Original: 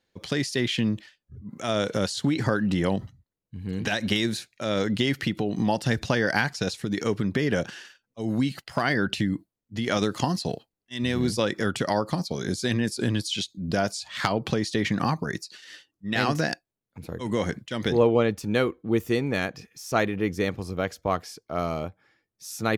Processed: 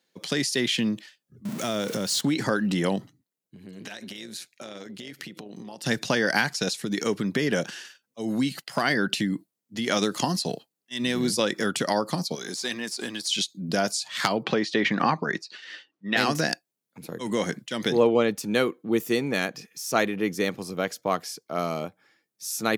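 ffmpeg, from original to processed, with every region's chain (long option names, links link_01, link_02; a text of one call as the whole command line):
ffmpeg -i in.wav -filter_complex "[0:a]asettb=1/sr,asplit=3[link_01][link_02][link_03];[link_01]atrim=end=1.454[link_04];[link_02]atrim=start=1.45:end=2.21,asetpts=PTS-STARTPTS,afade=type=in:duration=0.004:curve=qsin,afade=type=out:start_time=0.756:duration=0.004:curve=qsin,aeval=exprs='val(0)+0.5*0.0188*sgn(val(0))':channel_layout=same,lowshelf=frequency=190:gain=10.5,acompressor=threshold=-25dB:ratio=3:attack=3.2:release=140:knee=1:detection=peak[link_05];[link_03]atrim=start=2.206[link_06];[link_04][link_05]acrossfade=duration=0.004:curve1=hsin:curve2=qsin[link_07];[link_07][link_06]acrossfade=duration=0.004:curve1=qsin:curve2=hsin,asettb=1/sr,asplit=3[link_08][link_09][link_10];[link_08]atrim=end=3.024[link_11];[link_09]atrim=start=3.02:end=5.86,asetpts=PTS-STARTPTS,afade=type=in:duration=0.004:curve=qsin,afade=type=out:start_time=2.836:duration=0.004:curve=qsin,acompressor=threshold=-33dB:ratio=10:attack=3.2:release=140:knee=1:detection=peak,tremolo=f=180:d=0.621[link_12];[link_10]atrim=start=5.856[link_13];[link_11][link_12]acrossfade=duration=0.004:curve1=hsin:curve2=qsin[link_14];[link_14][link_13]acrossfade=duration=0.004:curve1=qsin:curve2=hsin,asettb=1/sr,asplit=3[link_15][link_16][link_17];[link_15]atrim=end=12.354[link_18];[link_16]atrim=start=12.35:end=13.27,asetpts=PTS-STARTPTS,afade=type=in:duration=0.004:curve=qsin,afade=type=out:start_time=0.916:duration=0.004:curve=qsin,aeval=exprs='if(lt(val(0),0),0.708*val(0),val(0))':channel_layout=same,highpass=frequency=550:poles=1,acrossover=split=7200[link_19][link_20];[link_20]acompressor=threshold=-48dB:ratio=4:attack=1:release=60[link_21];[link_19][link_21]amix=inputs=2:normalize=0[link_22];[link_17]atrim=start=13.266[link_23];[link_18][link_22]acrossfade=duration=0.004:curve1=hsin:curve2=qsin[link_24];[link_24][link_23]acrossfade=duration=0.004:curve1=qsin:curve2=hsin,asettb=1/sr,asplit=3[link_25][link_26][link_27];[link_25]atrim=end=14.434[link_28];[link_26]atrim=start=14.43:end=16.17,asetpts=PTS-STARTPTS,afade=type=in:duration=0.004:curve=qsin,afade=type=out:start_time=1.736:duration=0.004:curve=qsin,lowpass=2800,lowshelf=frequency=240:gain=-9.5,acontrast=28[link_29];[link_27]atrim=start=16.166[link_30];[link_28][link_29]acrossfade=duration=0.004:curve1=hsin:curve2=qsin[link_31];[link_31][link_30]acrossfade=duration=0.004:curve1=qsin:curve2=hsin,highpass=frequency=150:width=0.5412,highpass=frequency=150:width=1.3066,highshelf=frequency=4400:gain=8.5" out.wav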